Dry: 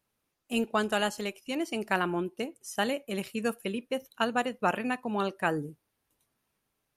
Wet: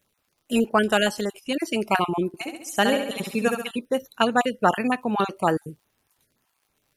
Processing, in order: random holes in the spectrogram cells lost 25%; 2.27–3.71 s: flutter echo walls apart 11.6 m, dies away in 0.7 s; crackle 73 per s -61 dBFS; trim +8 dB

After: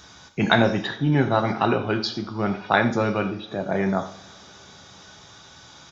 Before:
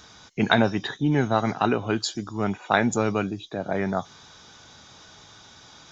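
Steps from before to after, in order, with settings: 0.86–3.49 s: steep low-pass 5.8 kHz 72 dB/octave; echo from a far wall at 15 m, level -16 dB; reverberation, pre-delay 3 ms, DRR 5.5 dB; trim +1 dB

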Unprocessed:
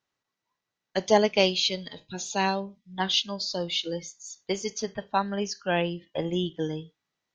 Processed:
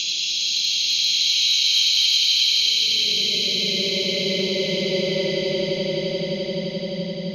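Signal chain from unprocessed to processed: Paulstretch 38×, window 0.05 s, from 1.61 s; saturation -13 dBFS, distortion -26 dB; echo with a slow build-up 86 ms, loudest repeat 8, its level -11 dB; trim +3 dB

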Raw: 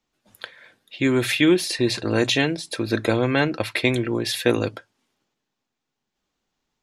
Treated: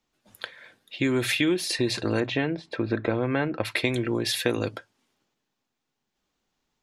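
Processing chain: 2.20–3.65 s: low-pass 2.1 kHz 12 dB/octave; compression 3:1, threshold -22 dBFS, peak gain reduction 8 dB

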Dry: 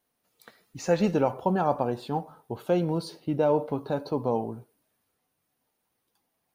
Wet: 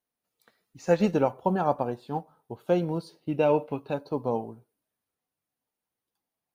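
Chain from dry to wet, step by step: 1.04–1.88 s: band-stop 5.1 kHz, Q 14; 3.32–3.94 s: peaking EQ 2.6 kHz +14.5 dB 0.33 oct; upward expansion 1.5:1, over -44 dBFS; trim +2 dB

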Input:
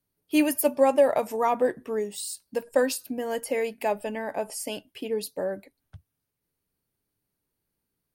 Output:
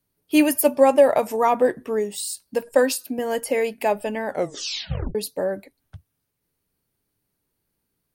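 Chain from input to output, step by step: 2.75–3.19 s: high-pass 170 Hz; 4.26 s: tape stop 0.89 s; trim +5 dB

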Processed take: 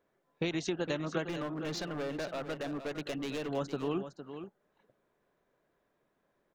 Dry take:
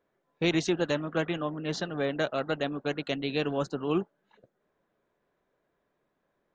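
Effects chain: compression 12:1, threshold -29 dBFS, peak gain reduction 9.5 dB; 1.29–3.49 s: hard clipper -33 dBFS, distortion -10 dB; delay 459 ms -10.5 dB

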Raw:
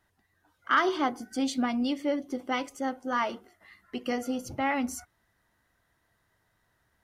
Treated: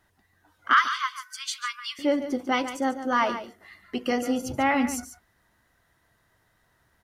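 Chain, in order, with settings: 0.73–1.99 s: brick-wall FIR high-pass 1 kHz; delay 144 ms -11 dB; trim +5 dB

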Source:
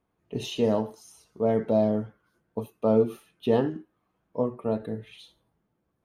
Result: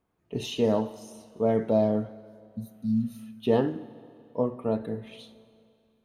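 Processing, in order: spectral replace 2.45–3.20 s, 270–3600 Hz both; Schroeder reverb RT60 2.4 s, combs from 32 ms, DRR 16 dB

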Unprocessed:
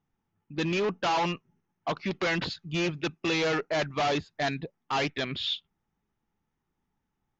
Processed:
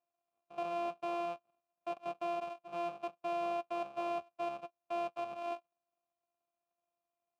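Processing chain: sorted samples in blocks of 128 samples; vowel filter a; trim +2 dB

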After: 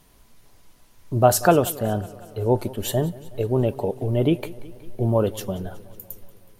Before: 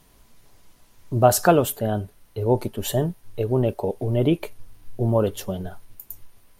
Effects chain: modulated delay 185 ms, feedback 65%, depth 67 cents, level -20 dB

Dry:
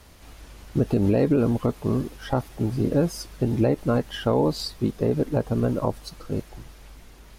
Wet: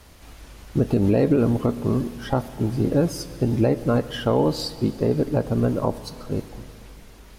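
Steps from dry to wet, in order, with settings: Schroeder reverb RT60 2.7 s, combs from 26 ms, DRR 14 dB; trim +1.5 dB

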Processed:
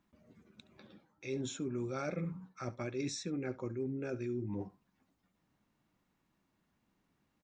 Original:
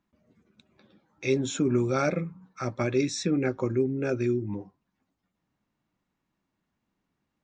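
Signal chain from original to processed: delay 70 ms -20 dB; reverse; compression 6:1, threshold -38 dBFS, peak gain reduction 17 dB; reverse; endings held to a fixed fall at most 490 dB/s; trim +2 dB

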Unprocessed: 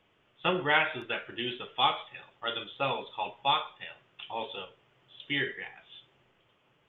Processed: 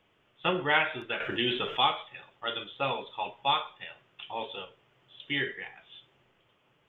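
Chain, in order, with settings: 1.20–1.85 s: level flattener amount 50%

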